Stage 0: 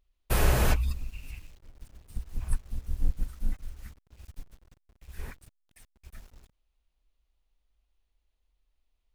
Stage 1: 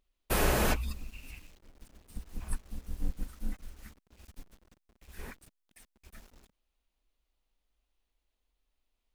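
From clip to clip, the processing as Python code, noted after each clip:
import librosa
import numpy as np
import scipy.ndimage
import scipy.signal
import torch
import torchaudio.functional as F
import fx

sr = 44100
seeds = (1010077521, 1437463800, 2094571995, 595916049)

y = fx.low_shelf_res(x, sr, hz=160.0, db=-6.5, q=1.5)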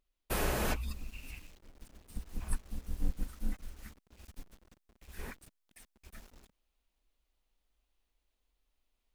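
y = fx.rider(x, sr, range_db=3, speed_s=0.5)
y = y * librosa.db_to_amplitude(-2.5)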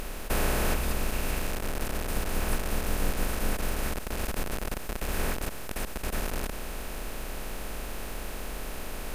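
y = fx.bin_compress(x, sr, power=0.2)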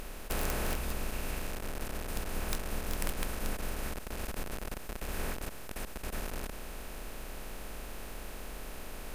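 y = (np.mod(10.0 ** (16.0 / 20.0) * x + 1.0, 2.0) - 1.0) / 10.0 ** (16.0 / 20.0)
y = y * librosa.db_to_amplitude(-6.5)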